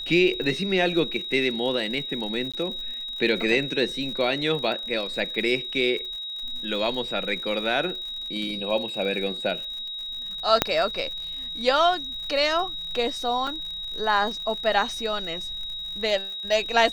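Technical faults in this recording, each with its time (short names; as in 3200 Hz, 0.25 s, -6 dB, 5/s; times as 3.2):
crackle 86/s -34 dBFS
tone 3800 Hz -31 dBFS
2.52–2.54 gap 16 ms
10.62 pop -2 dBFS
13.47 gap 3.9 ms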